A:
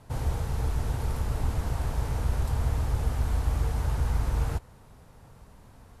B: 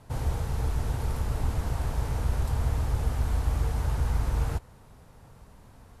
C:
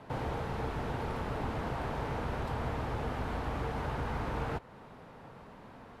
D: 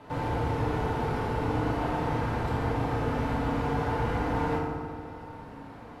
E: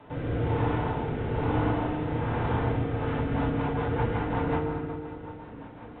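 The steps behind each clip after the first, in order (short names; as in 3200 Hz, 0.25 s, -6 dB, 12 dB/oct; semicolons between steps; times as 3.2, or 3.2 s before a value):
nothing audible
three-band isolator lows -17 dB, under 160 Hz, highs -19 dB, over 3700 Hz; in parallel at +1 dB: compressor, threshold -45 dBFS, peak gain reduction 11.5 dB
FDN reverb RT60 1.9 s, low-frequency decay 1.45×, high-frequency decay 0.55×, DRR -4 dB
rotary speaker horn 1.1 Hz, later 5.5 Hz, at 2.75; echo with dull and thin repeats by turns 0.125 s, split 800 Hz, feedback 53%, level -7.5 dB; gain +2 dB; A-law 64 kbps 8000 Hz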